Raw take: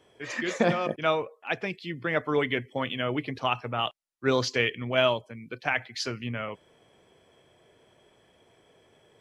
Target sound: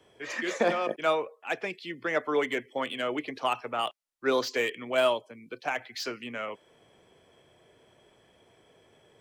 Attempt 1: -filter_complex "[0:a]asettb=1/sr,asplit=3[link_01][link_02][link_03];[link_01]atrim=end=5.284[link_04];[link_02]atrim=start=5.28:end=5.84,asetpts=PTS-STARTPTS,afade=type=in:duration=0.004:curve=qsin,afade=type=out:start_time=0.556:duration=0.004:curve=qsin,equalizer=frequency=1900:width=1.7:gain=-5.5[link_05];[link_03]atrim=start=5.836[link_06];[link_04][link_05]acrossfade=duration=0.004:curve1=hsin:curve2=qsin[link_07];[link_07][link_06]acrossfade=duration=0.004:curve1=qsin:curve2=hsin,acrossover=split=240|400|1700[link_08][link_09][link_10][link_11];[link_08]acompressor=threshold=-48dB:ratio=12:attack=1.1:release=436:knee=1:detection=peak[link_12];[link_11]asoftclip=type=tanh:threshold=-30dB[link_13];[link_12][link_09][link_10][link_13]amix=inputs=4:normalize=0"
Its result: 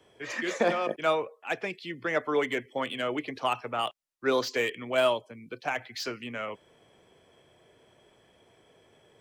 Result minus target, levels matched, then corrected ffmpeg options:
downward compressor: peak gain reduction −8.5 dB
-filter_complex "[0:a]asettb=1/sr,asplit=3[link_01][link_02][link_03];[link_01]atrim=end=5.284[link_04];[link_02]atrim=start=5.28:end=5.84,asetpts=PTS-STARTPTS,afade=type=in:duration=0.004:curve=qsin,afade=type=out:start_time=0.556:duration=0.004:curve=qsin,equalizer=frequency=1900:width=1.7:gain=-5.5[link_05];[link_03]atrim=start=5.836[link_06];[link_04][link_05]acrossfade=duration=0.004:curve1=hsin:curve2=qsin[link_07];[link_07][link_06]acrossfade=duration=0.004:curve1=qsin:curve2=hsin,acrossover=split=240|400|1700[link_08][link_09][link_10][link_11];[link_08]acompressor=threshold=-57dB:ratio=12:attack=1.1:release=436:knee=1:detection=peak[link_12];[link_11]asoftclip=type=tanh:threshold=-30dB[link_13];[link_12][link_09][link_10][link_13]amix=inputs=4:normalize=0"

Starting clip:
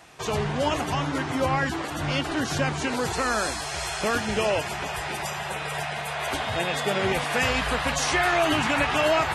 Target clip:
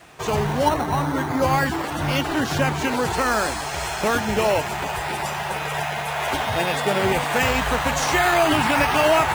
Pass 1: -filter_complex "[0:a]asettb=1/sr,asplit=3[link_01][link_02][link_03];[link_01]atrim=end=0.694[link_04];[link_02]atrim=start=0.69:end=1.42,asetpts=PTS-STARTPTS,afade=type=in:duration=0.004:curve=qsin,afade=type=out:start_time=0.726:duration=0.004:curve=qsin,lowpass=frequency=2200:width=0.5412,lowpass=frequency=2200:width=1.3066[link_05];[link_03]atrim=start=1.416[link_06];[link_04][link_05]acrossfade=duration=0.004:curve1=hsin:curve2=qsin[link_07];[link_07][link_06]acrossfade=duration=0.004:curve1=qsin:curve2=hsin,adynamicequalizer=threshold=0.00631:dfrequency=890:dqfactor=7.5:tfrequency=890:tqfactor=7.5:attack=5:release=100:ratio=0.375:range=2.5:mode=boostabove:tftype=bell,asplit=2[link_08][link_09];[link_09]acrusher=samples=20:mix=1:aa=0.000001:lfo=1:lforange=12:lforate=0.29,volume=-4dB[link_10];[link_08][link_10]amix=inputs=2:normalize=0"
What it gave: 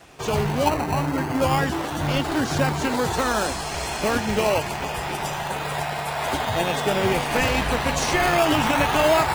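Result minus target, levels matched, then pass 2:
sample-and-hold swept by an LFO: distortion +10 dB
-filter_complex "[0:a]asettb=1/sr,asplit=3[link_01][link_02][link_03];[link_01]atrim=end=0.694[link_04];[link_02]atrim=start=0.69:end=1.42,asetpts=PTS-STARTPTS,afade=type=in:duration=0.004:curve=qsin,afade=type=out:start_time=0.726:duration=0.004:curve=qsin,lowpass=frequency=2200:width=0.5412,lowpass=frequency=2200:width=1.3066[link_05];[link_03]atrim=start=1.416[link_06];[link_04][link_05]acrossfade=duration=0.004:curve1=hsin:curve2=qsin[link_07];[link_07][link_06]acrossfade=duration=0.004:curve1=qsin:curve2=hsin,adynamicequalizer=threshold=0.00631:dfrequency=890:dqfactor=7.5:tfrequency=890:tqfactor=7.5:attack=5:release=100:ratio=0.375:range=2.5:mode=boostabove:tftype=bell,asplit=2[link_08][link_09];[link_09]acrusher=samples=7:mix=1:aa=0.000001:lfo=1:lforange=4.2:lforate=0.29,volume=-4dB[link_10];[link_08][link_10]amix=inputs=2:normalize=0"

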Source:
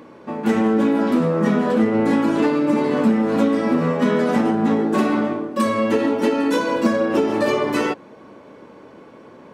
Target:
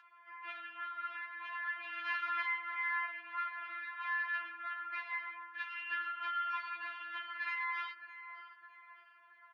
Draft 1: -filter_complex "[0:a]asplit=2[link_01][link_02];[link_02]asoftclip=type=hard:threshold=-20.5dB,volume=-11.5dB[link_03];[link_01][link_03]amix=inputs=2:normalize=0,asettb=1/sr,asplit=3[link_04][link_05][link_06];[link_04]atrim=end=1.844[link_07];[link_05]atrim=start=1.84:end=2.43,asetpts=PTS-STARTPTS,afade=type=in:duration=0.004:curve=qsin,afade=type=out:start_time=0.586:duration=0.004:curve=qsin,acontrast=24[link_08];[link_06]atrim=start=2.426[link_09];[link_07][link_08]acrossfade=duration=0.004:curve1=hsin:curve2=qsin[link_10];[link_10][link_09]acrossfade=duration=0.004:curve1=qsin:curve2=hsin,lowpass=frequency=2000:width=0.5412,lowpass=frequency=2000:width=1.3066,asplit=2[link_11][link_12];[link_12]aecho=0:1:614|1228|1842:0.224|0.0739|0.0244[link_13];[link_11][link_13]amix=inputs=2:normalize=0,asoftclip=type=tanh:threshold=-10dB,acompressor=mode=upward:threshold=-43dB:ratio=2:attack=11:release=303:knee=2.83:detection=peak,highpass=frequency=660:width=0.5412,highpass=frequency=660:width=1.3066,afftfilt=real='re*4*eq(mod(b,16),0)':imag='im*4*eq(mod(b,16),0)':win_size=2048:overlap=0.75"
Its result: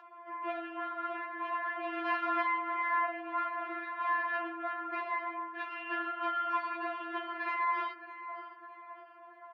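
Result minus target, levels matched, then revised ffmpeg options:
500 Hz band +19.0 dB; hard clipping: distortion +25 dB
-filter_complex "[0:a]asplit=2[link_01][link_02];[link_02]asoftclip=type=hard:threshold=-9dB,volume=-11.5dB[link_03];[link_01][link_03]amix=inputs=2:normalize=0,asettb=1/sr,asplit=3[link_04][link_05][link_06];[link_04]atrim=end=1.844[link_07];[link_05]atrim=start=1.84:end=2.43,asetpts=PTS-STARTPTS,afade=type=in:duration=0.004:curve=qsin,afade=type=out:start_time=0.586:duration=0.004:curve=qsin,acontrast=24[link_08];[link_06]atrim=start=2.426[link_09];[link_07][link_08]acrossfade=duration=0.004:curve1=hsin:curve2=qsin[link_10];[link_10][link_09]acrossfade=duration=0.004:curve1=qsin:curve2=hsin,lowpass=frequency=2000:width=0.5412,lowpass=frequency=2000:width=1.3066,asplit=2[link_11][link_12];[link_12]aecho=0:1:614|1228|1842:0.224|0.0739|0.0244[link_13];[link_11][link_13]amix=inputs=2:normalize=0,asoftclip=type=tanh:threshold=-10dB,acompressor=mode=upward:threshold=-43dB:ratio=2:attack=11:release=303:knee=2.83:detection=peak,highpass=frequency=1400:width=0.5412,highpass=frequency=1400:width=1.3066,afftfilt=real='re*4*eq(mod(b,16),0)':imag='im*4*eq(mod(b,16),0)':win_size=2048:overlap=0.75"

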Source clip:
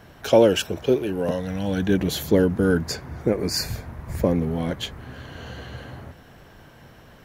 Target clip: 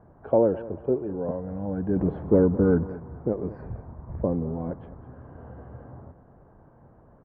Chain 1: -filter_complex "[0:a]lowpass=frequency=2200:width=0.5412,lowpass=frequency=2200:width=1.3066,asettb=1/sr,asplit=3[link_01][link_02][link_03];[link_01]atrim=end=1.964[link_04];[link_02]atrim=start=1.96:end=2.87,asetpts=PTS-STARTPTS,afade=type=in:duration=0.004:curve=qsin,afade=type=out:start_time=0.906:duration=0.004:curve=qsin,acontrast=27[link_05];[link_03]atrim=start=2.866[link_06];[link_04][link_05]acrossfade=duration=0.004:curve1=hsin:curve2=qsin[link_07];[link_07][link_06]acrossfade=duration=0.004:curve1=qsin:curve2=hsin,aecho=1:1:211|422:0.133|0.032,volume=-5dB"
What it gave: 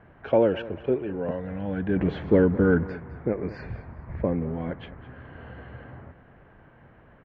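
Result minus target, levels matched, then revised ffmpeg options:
2,000 Hz band +11.5 dB
-filter_complex "[0:a]lowpass=frequency=1100:width=0.5412,lowpass=frequency=1100:width=1.3066,asettb=1/sr,asplit=3[link_01][link_02][link_03];[link_01]atrim=end=1.964[link_04];[link_02]atrim=start=1.96:end=2.87,asetpts=PTS-STARTPTS,afade=type=in:duration=0.004:curve=qsin,afade=type=out:start_time=0.906:duration=0.004:curve=qsin,acontrast=27[link_05];[link_03]atrim=start=2.866[link_06];[link_04][link_05]acrossfade=duration=0.004:curve1=hsin:curve2=qsin[link_07];[link_07][link_06]acrossfade=duration=0.004:curve1=qsin:curve2=hsin,aecho=1:1:211|422:0.133|0.032,volume=-5dB"

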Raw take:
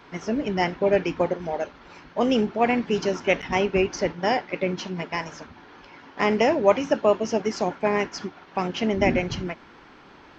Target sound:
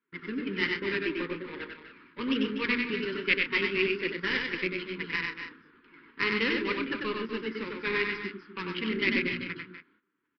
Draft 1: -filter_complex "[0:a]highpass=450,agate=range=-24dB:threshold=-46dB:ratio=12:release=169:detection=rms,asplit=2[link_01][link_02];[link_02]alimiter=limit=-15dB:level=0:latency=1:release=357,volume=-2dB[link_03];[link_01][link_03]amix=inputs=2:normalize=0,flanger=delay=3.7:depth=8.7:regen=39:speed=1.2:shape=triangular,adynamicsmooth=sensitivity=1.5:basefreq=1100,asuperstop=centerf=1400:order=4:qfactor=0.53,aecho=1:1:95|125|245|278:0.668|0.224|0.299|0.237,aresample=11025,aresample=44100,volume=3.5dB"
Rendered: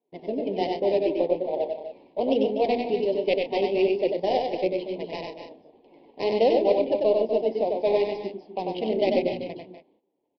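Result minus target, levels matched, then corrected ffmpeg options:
500 Hz band +7.5 dB
-filter_complex "[0:a]highpass=450,agate=range=-24dB:threshold=-46dB:ratio=12:release=169:detection=rms,asplit=2[link_01][link_02];[link_02]alimiter=limit=-15dB:level=0:latency=1:release=357,volume=-2dB[link_03];[link_01][link_03]amix=inputs=2:normalize=0,flanger=delay=3.7:depth=8.7:regen=39:speed=1.2:shape=triangular,adynamicsmooth=sensitivity=1.5:basefreq=1100,asuperstop=centerf=690:order=4:qfactor=0.53,aecho=1:1:95|125|245|278:0.668|0.224|0.299|0.237,aresample=11025,aresample=44100,volume=3.5dB"

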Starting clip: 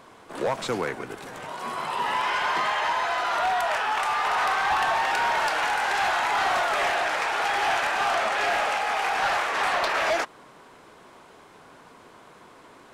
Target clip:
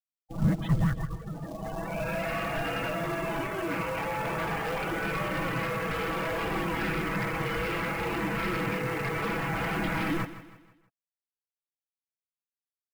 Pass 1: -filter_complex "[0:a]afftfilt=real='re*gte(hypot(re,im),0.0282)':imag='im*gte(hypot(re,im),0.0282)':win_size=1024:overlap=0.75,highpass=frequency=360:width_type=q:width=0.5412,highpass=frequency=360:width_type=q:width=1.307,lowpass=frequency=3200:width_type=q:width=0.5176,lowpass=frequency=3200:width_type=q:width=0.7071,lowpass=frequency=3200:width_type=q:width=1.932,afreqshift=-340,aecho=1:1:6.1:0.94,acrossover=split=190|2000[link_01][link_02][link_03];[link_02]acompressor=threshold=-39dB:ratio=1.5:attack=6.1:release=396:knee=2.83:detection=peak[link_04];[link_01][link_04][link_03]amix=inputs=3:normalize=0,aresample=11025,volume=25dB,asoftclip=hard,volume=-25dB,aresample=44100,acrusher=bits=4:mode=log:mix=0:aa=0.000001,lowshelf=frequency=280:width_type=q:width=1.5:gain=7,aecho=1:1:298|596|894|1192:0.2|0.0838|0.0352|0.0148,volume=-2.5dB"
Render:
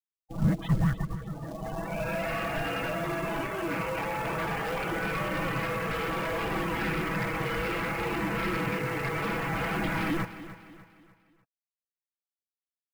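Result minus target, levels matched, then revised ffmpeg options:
echo 138 ms late
-filter_complex "[0:a]afftfilt=real='re*gte(hypot(re,im),0.0282)':imag='im*gte(hypot(re,im),0.0282)':win_size=1024:overlap=0.75,highpass=frequency=360:width_type=q:width=0.5412,highpass=frequency=360:width_type=q:width=1.307,lowpass=frequency=3200:width_type=q:width=0.5176,lowpass=frequency=3200:width_type=q:width=0.7071,lowpass=frequency=3200:width_type=q:width=1.932,afreqshift=-340,aecho=1:1:6.1:0.94,acrossover=split=190|2000[link_01][link_02][link_03];[link_02]acompressor=threshold=-39dB:ratio=1.5:attack=6.1:release=396:knee=2.83:detection=peak[link_04];[link_01][link_04][link_03]amix=inputs=3:normalize=0,aresample=11025,volume=25dB,asoftclip=hard,volume=-25dB,aresample=44100,acrusher=bits=4:mode=log:mix=0:aa=0.000001,lowshelf=frequency=280:width_type=q:width=1.5:gain=7,aecho=1:1:160|320|480|640:0.2|0.0838|0.0352|0.0148,volume=-2.5dB"

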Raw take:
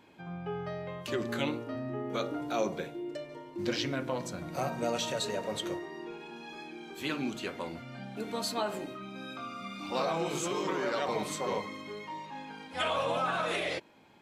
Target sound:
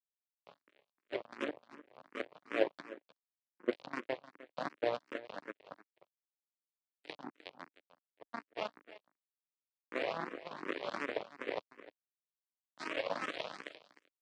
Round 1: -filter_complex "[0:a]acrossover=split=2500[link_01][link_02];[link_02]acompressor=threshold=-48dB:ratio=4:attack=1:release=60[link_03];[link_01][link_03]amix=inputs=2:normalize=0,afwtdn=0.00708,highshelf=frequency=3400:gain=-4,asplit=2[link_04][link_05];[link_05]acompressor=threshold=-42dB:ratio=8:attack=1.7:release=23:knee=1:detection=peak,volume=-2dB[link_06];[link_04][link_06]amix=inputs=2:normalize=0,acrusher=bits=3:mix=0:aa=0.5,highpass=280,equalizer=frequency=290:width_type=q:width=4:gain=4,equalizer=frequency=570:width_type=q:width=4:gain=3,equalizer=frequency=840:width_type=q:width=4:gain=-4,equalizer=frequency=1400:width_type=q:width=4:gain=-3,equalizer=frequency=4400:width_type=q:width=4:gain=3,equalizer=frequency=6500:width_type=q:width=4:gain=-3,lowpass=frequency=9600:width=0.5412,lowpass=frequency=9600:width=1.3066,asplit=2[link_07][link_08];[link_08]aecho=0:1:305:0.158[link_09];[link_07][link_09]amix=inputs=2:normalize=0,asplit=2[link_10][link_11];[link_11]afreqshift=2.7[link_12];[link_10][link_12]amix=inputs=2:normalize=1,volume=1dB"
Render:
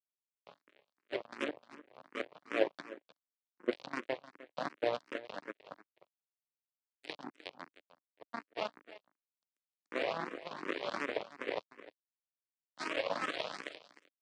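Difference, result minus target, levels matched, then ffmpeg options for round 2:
8,000 Hz band +3.0 dB
-filter_complex "[0:a]acrossover=split=2500[link_01][link_02];[link_02]acompressor=threshold=-48dB:ratio=4:attack=1:release=60[link_03];[link_01][link_03]amix=inputs=2:normalize=0,afwtdn=0.00708,highshelf=frequency=3400:gain=-15,asplit=2[link_04][link_05];[link_05]acompressor=threshold=-42dB:ratio=8:attack=1.7:release=23:knee=1:detection=peak,volume=-2dB[link_06];[link_04][link_06]amix=inputs=2:normalize=0,acrusher=bits=3:mix=0:aa=0.5,highpass=280,equalizer=frequency=290:width_type=q:width=4:gain=4,equalizer=frequency=570:width_type=q:width=4:gain=3,equalizer=frequency=840:width_type=q:width=4:gain=-4,equalizer=frequency=1400:width_type=q:width=4:gain=-3,equalizer=frequency=4400:width_type=q:width=4:gain=3,equalizer=frequency=6500:width_type=q:width=4:gain=-3,lowpass=frequency=9600:width=0.5412,lowpass=frequency=9600:width=1.3066,asplit=2[link_07][link_08];[link_08]aecho=0:1:305:0.158[link_09];[link_07][link_09]amix=inputs=2:normalize=0,asplit=2[link_10][link_11];[link_11]afreqshift=2.7[link_12];[link_10][link_12]amix=inputs=2:normalize=1,volume=1dB"

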